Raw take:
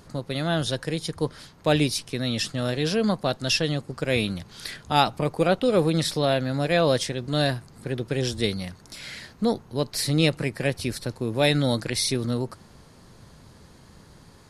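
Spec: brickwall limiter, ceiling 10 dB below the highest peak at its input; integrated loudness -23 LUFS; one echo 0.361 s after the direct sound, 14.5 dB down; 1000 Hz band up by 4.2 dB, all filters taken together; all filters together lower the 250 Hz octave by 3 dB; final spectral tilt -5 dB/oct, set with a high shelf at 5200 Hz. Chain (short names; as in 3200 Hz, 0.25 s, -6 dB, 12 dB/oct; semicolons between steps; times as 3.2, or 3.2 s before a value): bell 250 Hz -4.5 dB; bell 1000 Hz +6.5 dB; high shelf 5200 Hz -5.5 dB; limiter -12.5 dBFS; echo 0.361 s -14.5 dB; gain +4 dB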